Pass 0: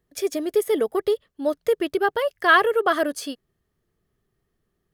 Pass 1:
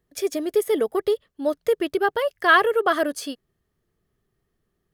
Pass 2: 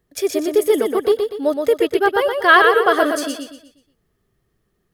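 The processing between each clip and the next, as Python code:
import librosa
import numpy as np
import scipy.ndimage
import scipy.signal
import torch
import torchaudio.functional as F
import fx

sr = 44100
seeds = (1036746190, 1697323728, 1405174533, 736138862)

y1 = x
y2 = fx.echo_feedback(y1, sr, ms=121, feedback_pct=38, wet_db=-5)
y2 = y2 * librosa.db_to_amplitude(4.5)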